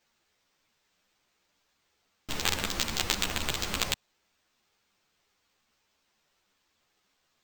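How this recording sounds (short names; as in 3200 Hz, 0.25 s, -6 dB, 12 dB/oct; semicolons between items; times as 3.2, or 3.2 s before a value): aliases and images of a low sample rate 11000 Hz, jitter 0%; a shimmering, thickened sound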